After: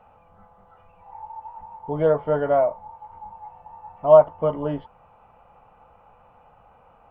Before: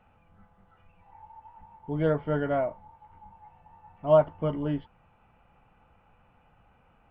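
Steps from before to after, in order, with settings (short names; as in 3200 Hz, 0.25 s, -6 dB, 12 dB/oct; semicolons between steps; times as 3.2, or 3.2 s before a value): band shelf 740 Hz +10 dB; in parallel at -2.5 dB: compressor, threshold -26 dBFS, peak gain reduction 19.5 dB; on the sum: gain -3 dB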